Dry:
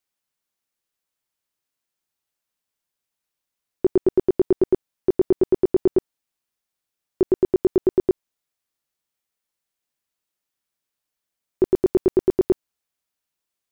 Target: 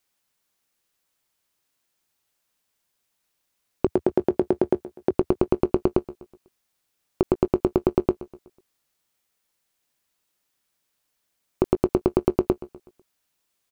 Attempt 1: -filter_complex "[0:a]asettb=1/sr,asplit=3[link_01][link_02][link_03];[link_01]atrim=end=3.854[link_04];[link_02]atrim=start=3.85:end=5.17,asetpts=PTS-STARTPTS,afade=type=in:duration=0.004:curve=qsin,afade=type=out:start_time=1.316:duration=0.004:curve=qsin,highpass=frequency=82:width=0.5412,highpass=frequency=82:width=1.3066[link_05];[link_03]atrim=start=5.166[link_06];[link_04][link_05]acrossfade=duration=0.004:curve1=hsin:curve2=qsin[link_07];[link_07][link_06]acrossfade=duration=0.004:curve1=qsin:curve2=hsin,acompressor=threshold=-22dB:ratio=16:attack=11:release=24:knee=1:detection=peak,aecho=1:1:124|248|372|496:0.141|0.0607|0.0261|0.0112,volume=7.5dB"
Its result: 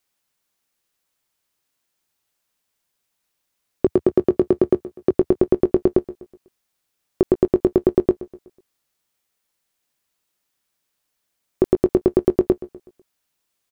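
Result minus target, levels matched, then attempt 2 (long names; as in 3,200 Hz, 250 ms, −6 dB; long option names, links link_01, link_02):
downward compressor: peak gain reduction −6 dB
-filter_complex "[0:a]asettb=1/sr,asplit=3[link_01][link_02][link_03];[link_01]atrim=end=3.854[link_04];[link_02]atrim=start=3.85:end=5.17,asetpts=PTS-STARTPTS,afade=type=in:duration=0.004:curve=qsin,afade=type=out:start_time=1.316:duration=0.004:curve=qsin,highpass=frequency=82:width=0.5412,highpass=frequency=82:width=1.3066[link_05];[link_03]atrim=start=5.166[link_06];[link_04][link_05]acrossfade=duration=0.004:curve1=hsin:curve2=qsin[link_07];[link_07][link_06]acrossfade=duration=0.004:curve1=qsin:curve2=hsin,acompressor=threshold=-28.5dB:ratio=16:attack=11:release=24:knee=1:detection=peak,aecho=1:1:124|248|372|496:0.141|0.0607|0.0261|0.0112,volume=7.5dB"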